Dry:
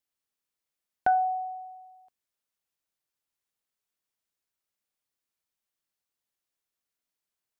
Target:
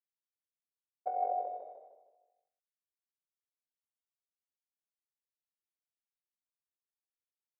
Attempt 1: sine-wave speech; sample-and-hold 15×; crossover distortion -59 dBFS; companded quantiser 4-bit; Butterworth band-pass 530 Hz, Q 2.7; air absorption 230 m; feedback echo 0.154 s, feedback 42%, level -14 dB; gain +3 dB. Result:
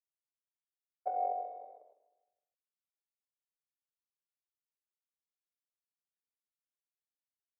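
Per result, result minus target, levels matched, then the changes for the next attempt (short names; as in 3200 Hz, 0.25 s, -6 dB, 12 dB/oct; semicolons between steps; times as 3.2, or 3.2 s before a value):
crossover distortion: distortion -11 dB; echo-to-direct -9.5 dB
change: crossover distortion -47 dBFS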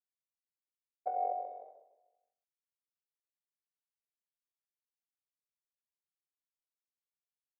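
echo-to-direct -9.5 dB
change: feedback echo 0.154 s, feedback 42%, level -4.5 dB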